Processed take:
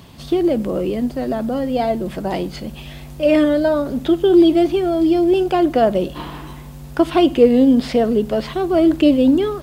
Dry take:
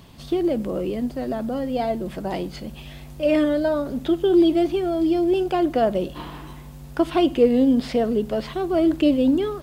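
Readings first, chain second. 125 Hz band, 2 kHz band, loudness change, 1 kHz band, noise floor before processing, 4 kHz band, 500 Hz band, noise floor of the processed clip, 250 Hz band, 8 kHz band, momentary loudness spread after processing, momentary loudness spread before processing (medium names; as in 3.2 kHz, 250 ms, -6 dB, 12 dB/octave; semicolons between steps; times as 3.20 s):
+5.0 dB, +5.0 dB, +5.0 dB, +5.0 dB, -40 dBFS, +5.0 dB, +5.0 dB, -36 dBFS, +5.0 dB, no reading, 15 LU, 15 LU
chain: high-pass 40 Hz; trim +5 dB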